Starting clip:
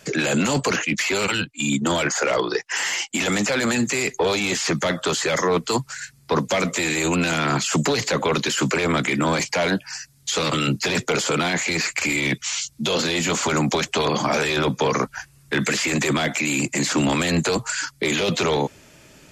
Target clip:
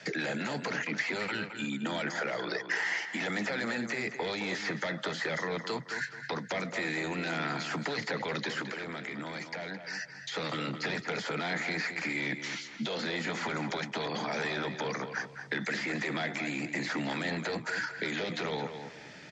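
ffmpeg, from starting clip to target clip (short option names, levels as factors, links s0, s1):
-filter_complex "[0:a]alimiter=limit=0.0944:level=0:latency=1:release=289,acrossover=split=230|1600|3300[s0][s1][s2][s3];[s0]acompressor=threshold=0.01:ratio=4[s4];[s1]acompressor=threshold=0.0251:ratio=4[s5];[s2]acompressor=threshold=0.00501:ratio=4[s6];[s3]acompressor=threshold=0.00794:ratio=4[s7];[s4][s5][s6][s7]amix=inputs=4:normalize=0,highpass=170,equalizer=f=260:t=q:w=4:g=-5,equalizer=f=380:t=q:w=4:g=-6,equalizer=f=550:t=q:w=4:g=-4,equalizer=f=1100:t=q:w=4:g=-7,equalizer=f=1900:t=q:w=4:g=7,equalizer=f=2800:t=q:w=4:g=-5,lowpass=f=5200:w=0.5412,lowpass=f=5200:w=1.3066,asettb=1/sr,asplit=3[s8][s9][s10];[s8]atrim=end=8.614[s11];[s9]atrim=start=8.61:end=9.94,asetpts=PTS-STARTPTS,afade=t=in:d=0.004:c=qsin,afade=t=out:st=1.326:d=0.004:c=qsin,acompressor=threshold=0.0126:ratio=6[s12];[s10]atrim=start=9.936[s13];[s11][s12]acrossfade=d=0.004:c1=hsin:c2=qsin[s14];[s14][s13]acrossfade=d=0.004:c1=qsin:c2=hsin,asplit=2[s15][s16];[s16]adelay=216,lowpass=f=3400:p=1,volume=0.398,asplit=2[s17][s18];[s18]adelay=216,lowpass=f=3400:p=1,volume=0.31,asplit=2[s19][s20];[s20]adelay=216,lowpass=f=3400:p=1,volume=0.31,asplit=2[s21][s22];[s22]adelay=216,lowpass=f=3400:p=1,volume=0.31[s23];[s15][s17][s19][s21][s23]amix=inputs=5:normalize=0,volume=1.26"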